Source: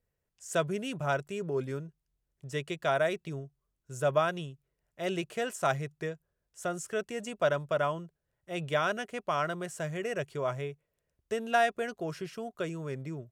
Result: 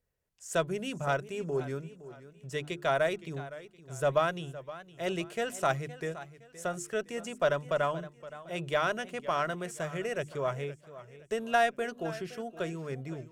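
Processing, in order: notches 50/100/150/200/250/300/350 Hz; added harmonics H 6 -33 dB, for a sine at -13.5 dBFS; warbling echo 0.516 s, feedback 35%, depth 96 cents, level -16 dB

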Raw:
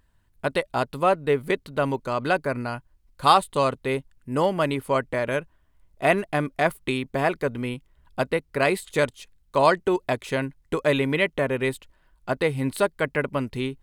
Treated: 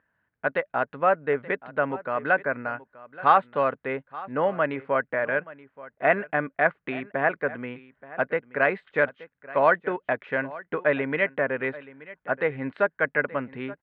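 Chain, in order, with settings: speaker cabinet 230–2200 Hz, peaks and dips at 240 Hz -3 dB, 360 Hz -8 dB, 980 Hz -4 dB, 1600 Hz +7 dB; echo 0.877 s -18.5 dB

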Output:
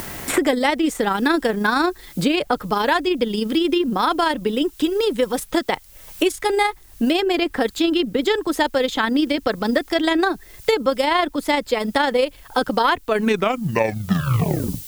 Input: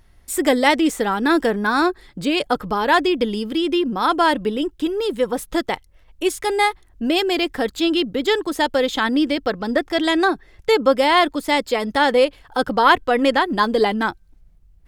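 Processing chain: tape stop at the end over 1.96 s; AM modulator 26 Hz, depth 25%; added noise blue -56 dBFS; three-band squash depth 100%

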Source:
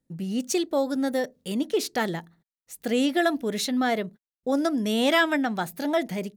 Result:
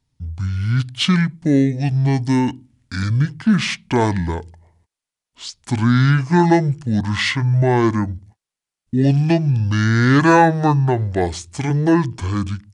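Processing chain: speed mistake 15 ips tape played at 7.5 ips; gain +8.5 dB

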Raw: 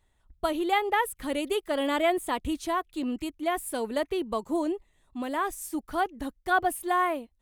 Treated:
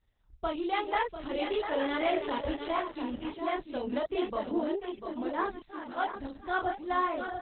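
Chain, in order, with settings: reverse delay 0.699 s, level -8.5 dB; 5.66–6.16 HPF 490 Hz 12 dB/oct; in parallel at -8 dB: hard clip -20 dBFS, distortion -17 dB; on the sum: chorus voices 4, 0.86 Hz, delay 29 ms, depth 1.2 ms; echo 0.695 s -8 dB; gain -3.5 dB; Opus 8 kbps 48000 Hz

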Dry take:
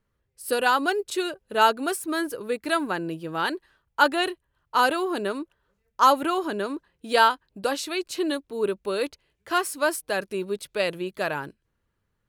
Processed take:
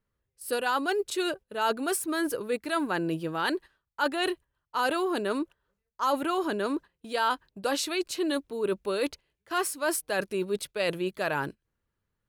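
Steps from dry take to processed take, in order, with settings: gate -43 dBFS, range -10 dB; reverse; compressor 4:1, threshold -30 dBFS, peak gain reduction 15 dB; reverse; gain +4 dB

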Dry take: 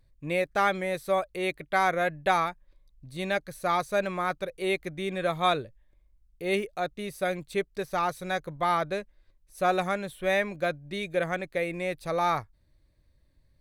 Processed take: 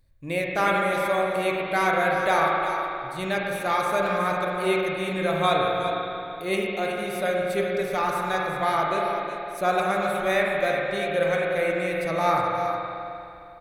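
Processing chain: high shelf 7400 Hz +6.5 dB; on a send: echo 0.367 s -9 dB; on the sum: spring tank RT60 2.7 s, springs 37/50 ms, chirp 60 ms, DRR -2 dB

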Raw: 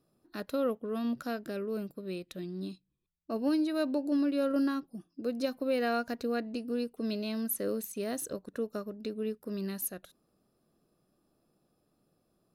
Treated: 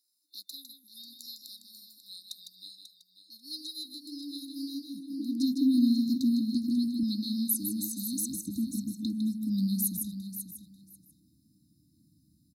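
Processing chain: on a send: feedback echo 0.541 s, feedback 16%, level -11 dB; on the sum: high-pass sweep 1900 Hz -> 80 Hz, 3.53–6.93; echo 0.155 s -7 dB; in parallel at -2 dB: limiter -26.5 dBFS, peak gain reduction 12 dB; 7.03–8.48 on the sum: low shelf 210 Hz -9.5 dB; FFT band-reject 330–3600 Hz; gain +2 dB

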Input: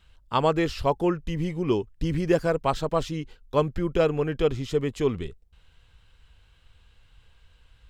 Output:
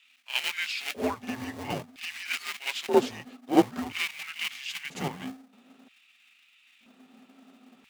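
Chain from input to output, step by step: frequency shift -270 Hz; in parallel at -6.5 dB: sample-rate reducer 1000 Hz, jitter 20%; on the sum: LFO high-pass square 0.51 Hz 390–2400 Hz; notches 50/100 Hz; reverse echo 54 ms -11.5 dB

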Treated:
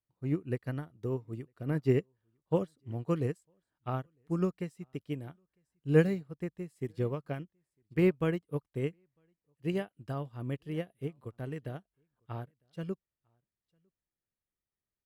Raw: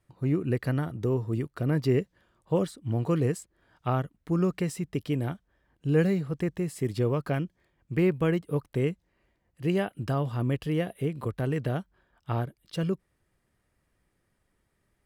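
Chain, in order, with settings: echo 0.953 s -22 dB; upward expander 2.5:1, over -36 dBFS; gain +1.5 dB

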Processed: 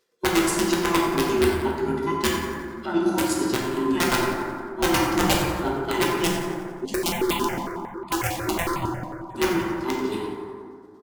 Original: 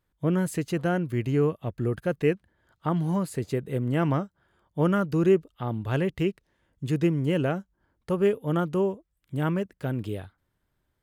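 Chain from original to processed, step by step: band inversion scrambler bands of 500 Hz; HPF 190 Hz 12 dB/oct; bell 5200 Hz +14.5 dB 1.5 oct; notches 50/100/150/200/250 Hz; chopper 8.5 Hz, depth 65%, duty 30%; wrapped overs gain 18.5 dB; vibrato 10 Hz 21 cents; feedback echo 89 ms, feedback 56%, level -13.5 dB; plate-style reverb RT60 2.2 s, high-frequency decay 0.3×, DRR -3.5 dB; 6.85–9.35 step phaser 11 Hz 380–1600 Hz; gain +3.5 dB

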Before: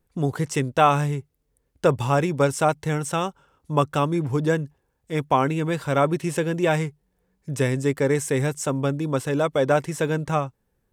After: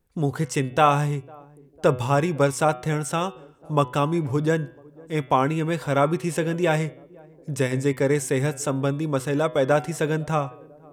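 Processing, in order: de-hum 124.7 Hz, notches 29; on a send: narrowing echo 0.501 s, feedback 66%, band-pass 370 Hz, level -23.5 dB

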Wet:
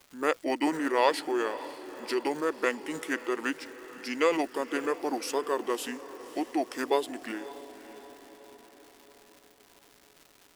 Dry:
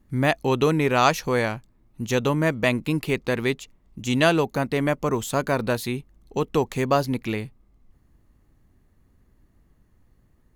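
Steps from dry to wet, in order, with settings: HPF 360 Hz 24 dB/oct; high shelf 9800 Hz +4 dB; crackle 360/s -38 dBFS; formant shift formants -5 st; diffused feedback echo 0.564 s, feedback 55%, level -15 dB; gain -4.5 dB

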